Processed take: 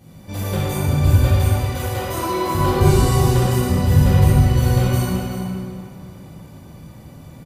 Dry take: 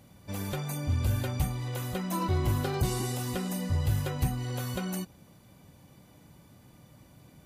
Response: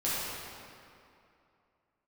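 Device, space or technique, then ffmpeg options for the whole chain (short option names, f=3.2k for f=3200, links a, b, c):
cave: -filter_complex "[0:a]asettb=1/sr,asplit=3[a][b][c];[a]atrim=end=1.134[d];[b]atrim=start=1.13:end=2.55,asetpts=PTS-STARTPTS,afade=t=in:d=0.004:c=qsin,afade=t=out:st=1.416:d=0.004:c=qsin,highpass=360[e];[c]atrim=start=2.546[f];[d][e]acrossfade=d=0.004:c1=hsin:c2=qsin[g];[g][f]acrossfade=d=0.004:c1=qsin:c2=hsin,aecho=1:1:381:0.266[h];[1:a]atrim=start_sample=2205[i];[h][i]afir=irnorm=-1:irlink=0,lowshelf=f=390:g=4.5,volume=2.5dB"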